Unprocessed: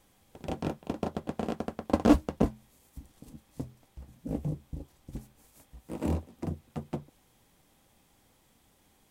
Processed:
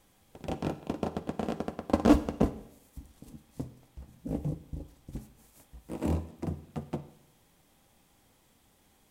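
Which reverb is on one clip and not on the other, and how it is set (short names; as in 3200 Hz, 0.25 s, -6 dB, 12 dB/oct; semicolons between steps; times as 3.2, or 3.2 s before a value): Schroeder reverb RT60 0.77 s, DRR 13.5 dB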